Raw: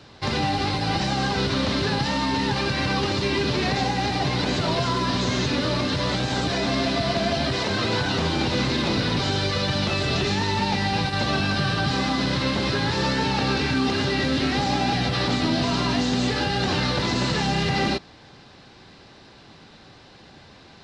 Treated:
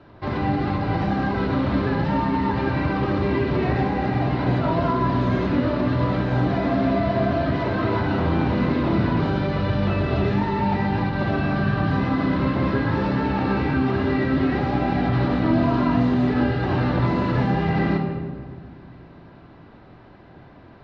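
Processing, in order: low-pass 1.5 kHz 12 dB/octave; on a send: reverberation RT60 1.7 s, pre-delay 3 ms, DRR 1.5 dB

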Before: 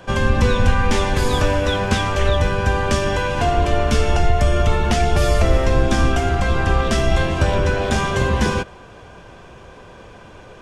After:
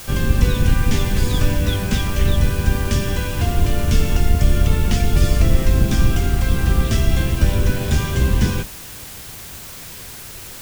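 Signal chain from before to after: octave divider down 1 oct, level +3 dB; peaking EQ 800 Hz -10 dB 2 oct; added noise white -35 dBFS; trim -1 dB

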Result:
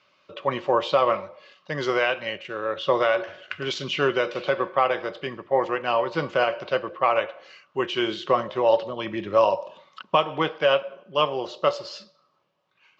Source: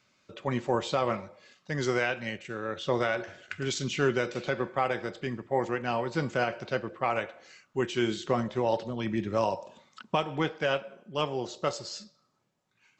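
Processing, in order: cabinet simulation 100–5100 Hz, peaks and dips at 120 Hz -8 dB, 230 Hz -10 dB, 570 Hz +7 dB, 1.1 kHz +9 dB, 2.9 kHz +7 dB; trim +3 dB

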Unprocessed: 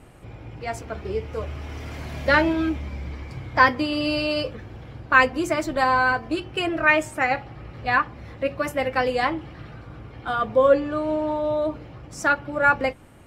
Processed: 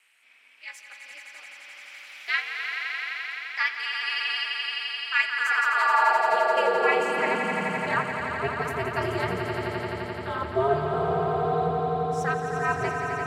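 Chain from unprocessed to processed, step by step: ring modulator 140 Hz; echo with a slow build-up 86 ms, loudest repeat 5, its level -8 dB; high-pass sweep 2.3 kHz -> 89 Hz, 5.16–8.37 s; trim -4.5 dB

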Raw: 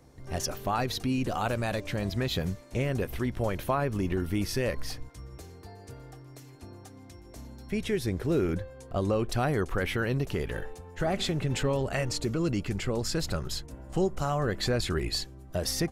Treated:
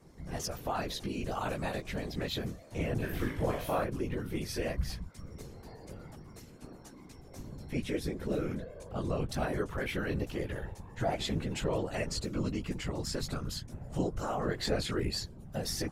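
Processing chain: in parallel at -3 dB: compression, threshold -40 dBFS, peak gain reduction 17 dB; on the sum: chorus voices 2, 0.17 Hz, delay 15 ms, depth 2.9 ms; 2.98–3.84 s: flutter echo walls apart 3.3 m, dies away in 0.5 s; wow and flutter 23 cents; whisper effect; trim -3.5 dB

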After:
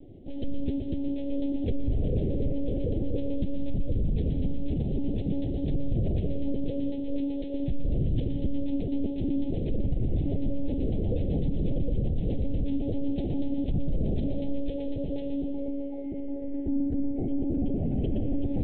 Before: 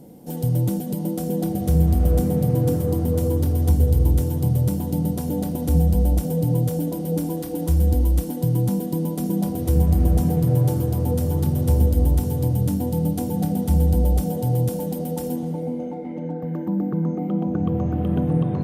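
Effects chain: tracing distortion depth 0.053 ms; monotone LPC vocoder at 8 kHz 280 Hz; reverberation RT60 1.1 s, pre-delay 103 ms, DRR 9 dB; peak limiter -16.5 dBFS, peak gain reduction 10.5 dB; Butterworth band-stop 1.2 kHz, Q 0.65; trim -2.5 dB

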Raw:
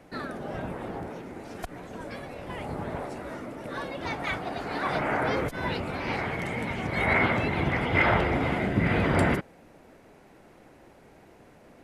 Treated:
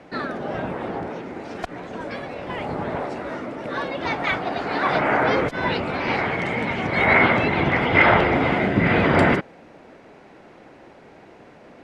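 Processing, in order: low-pass 4.9 kHz 12 dB/octave; bass shelf 97 Hz -12 dB; trim +8 dB

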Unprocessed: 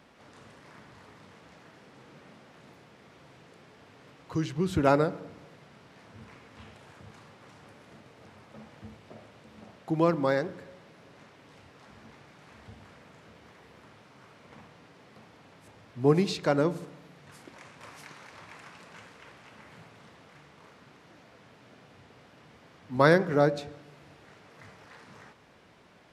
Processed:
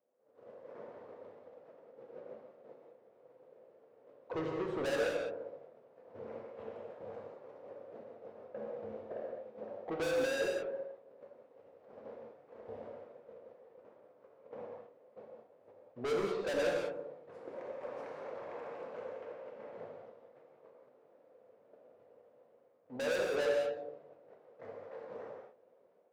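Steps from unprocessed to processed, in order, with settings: gate -51 dBFS, range -17 dB; level rider gain up to 13 dB; band-pass filter 520 Hz, Q 6.1; saturation -37.5 dBFS, distortion -1 dB; gated-style reverb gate 230 ms flat, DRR -0.5 dB; trim +3.5 dB

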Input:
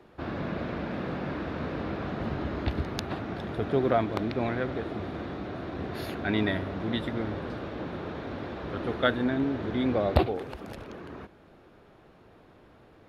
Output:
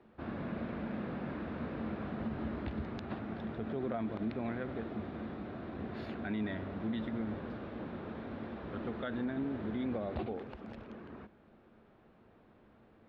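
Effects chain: low-pass 3.3 kHz 12 dB/octave; peaking EQ 220 Hz +10.5 dB 0.2 oct; peak limiter -20 dBFS, peak gain reduction 12 dB; trim -8 dB

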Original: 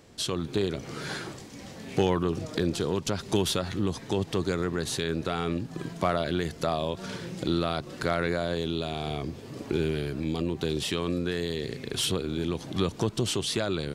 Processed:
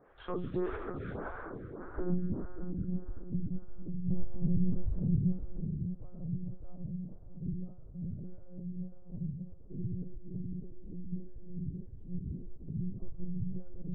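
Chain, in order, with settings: 4.04–5.09 s: waveshaping leveller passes 5; low-pass sweep 1.4 kHz -> 120 Hz, 1.01–2.44 s; plate-style reverb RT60 4.8 s, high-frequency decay 0.45×, DRR 0.5 dB; monotone LPC vocoder at 8 kHz 180 Hz; lamp-driven phase shifter 1.7 Hz; trim -5.5 dB

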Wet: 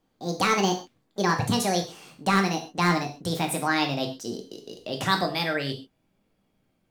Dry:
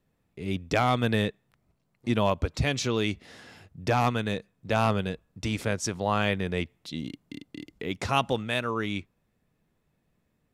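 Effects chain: gliding tape speed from 180% -> 125%; gated-style reverb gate 160 ms falling, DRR 2.5 dB

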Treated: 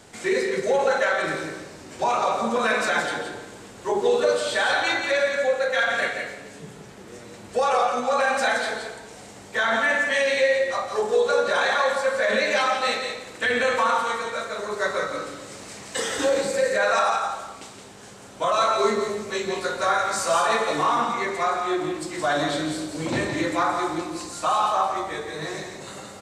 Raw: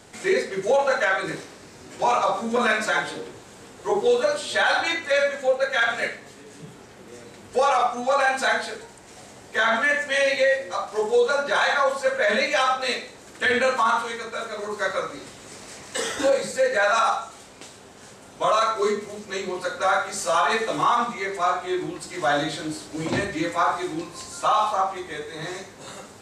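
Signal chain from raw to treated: peak limiter -14 dBFS, peak gain reduction 3.5 dB; 18.52–20.38 s: doubling 18 ms -4.5 dB; delay 170 ms -6.5 dB; on a send at -9.5 dB: reverberation RT60 1.1 s, pre-delay 115 ms

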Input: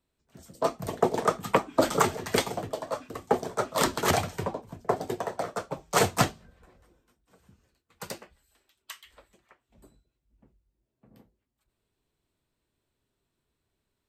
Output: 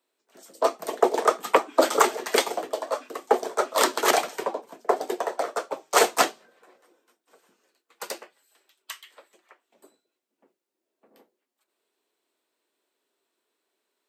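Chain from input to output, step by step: high-pass 330 Hz 24 dB/octave; trim +4.5 dB

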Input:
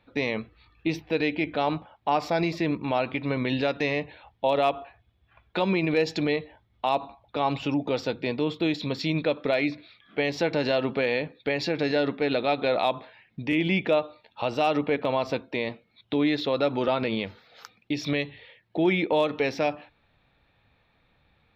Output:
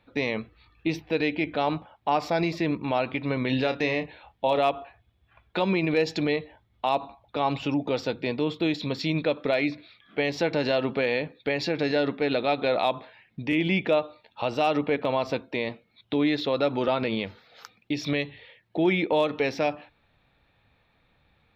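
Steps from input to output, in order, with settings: 3.46–4.58 s: doubling 31 ms -9.5 dB

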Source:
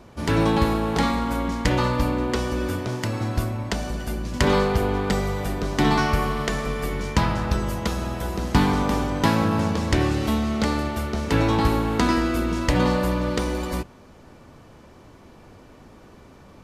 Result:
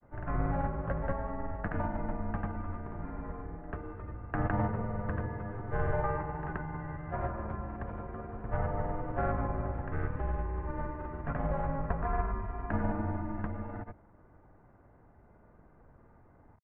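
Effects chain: granulator, pitch spread up and down by 0 st; mistuned SSB -280 Hz 160–2000 Hz; trim -8 dB

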